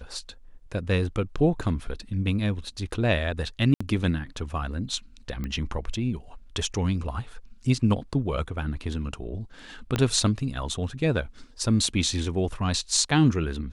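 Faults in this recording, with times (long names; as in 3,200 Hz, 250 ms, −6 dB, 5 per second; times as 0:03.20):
0:03.74–0:03.81: drop-out 65 ms
0:05.44: click −20 dBFS
0:09.96: click −11 dBFS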